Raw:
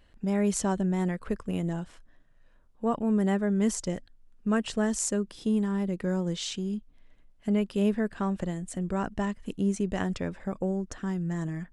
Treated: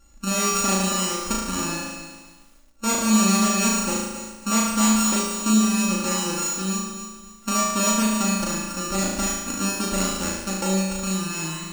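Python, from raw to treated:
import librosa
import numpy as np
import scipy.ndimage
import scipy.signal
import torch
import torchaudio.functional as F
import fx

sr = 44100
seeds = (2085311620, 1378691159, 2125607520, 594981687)

y = np.r_[np.sort(x[:len(x) // 32 * 32].reshape(-1, 32), axis=1).ravel(), x[len(x) // 32 * 32:]]
y = fx.peak_eq(y, sr, hz=6700.0, db=12.0, octaves=0.92)
y = y + 0.66 * np.pad(y, (int(3.5 * sr / 1000.0), 0))[:len(y)]
y = fx.room_flutter(y, sr, wall_m=6.3, rt60_s=1.1)
y = fx.echo_crushed(y, sr, ms=276, feedback_pct=35, bits=8, wet_db=-11)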